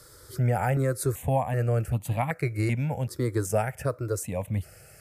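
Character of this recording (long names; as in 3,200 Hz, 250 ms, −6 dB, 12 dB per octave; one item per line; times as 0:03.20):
notches that jump at a steady rate 2.6 Hz 730–1,500 Hz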